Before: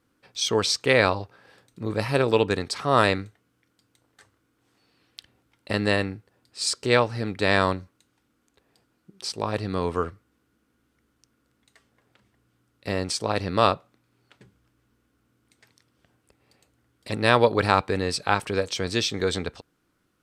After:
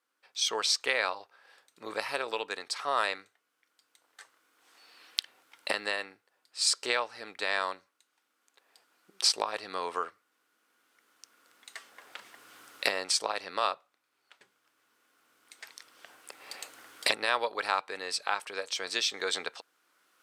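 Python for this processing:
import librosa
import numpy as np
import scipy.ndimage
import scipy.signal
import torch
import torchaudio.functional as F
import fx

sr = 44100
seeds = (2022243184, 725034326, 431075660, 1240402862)

y = fx.recorder_agc(x, sr, target_db=-6.5, rise_db_per_s=9.7, max_gain_db=30)
y = scipy.signal.sosfilt(scipy.signal.butter(2, 750.0, 'highpass', fs=sr, output='sos'), y)
y = F.gain(torch.from_numpy(y), -7.0).numpy()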